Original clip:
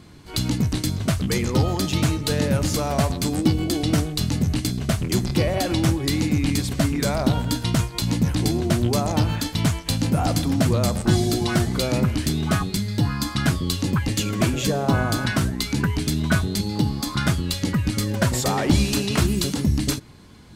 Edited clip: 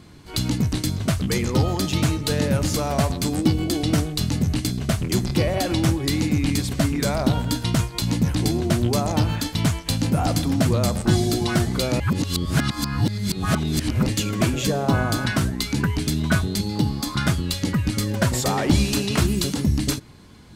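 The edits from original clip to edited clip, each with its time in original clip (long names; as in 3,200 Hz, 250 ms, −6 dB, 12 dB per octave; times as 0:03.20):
0:12.00–0:14.06: reverse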